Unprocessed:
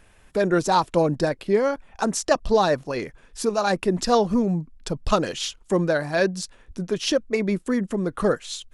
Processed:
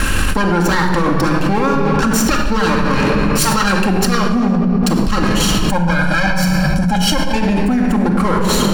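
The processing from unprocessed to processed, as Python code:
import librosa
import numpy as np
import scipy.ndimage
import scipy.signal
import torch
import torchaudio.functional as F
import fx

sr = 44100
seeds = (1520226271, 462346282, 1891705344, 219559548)

y = fx.lower_of_two(x, sr, delay_ms=0.7)
y = fx.highpass(y, sr, hz=1200.0, slope=12, at=(2.94, 3.53), fade=0.02)
y = fx.comb(y, sr, ms=1.3, depth=0.9, at=(5.58, 7.34), fade=0.02)
y = fx.room_shoebox(y, sr, seeds[0], volume_m3=2900.0, walls='mixed', distance_m=2.2)
y = fx.env_flatten(y, sr, amount_pct=100)
y = y * 10.0 ** (-1.0 / 20.0)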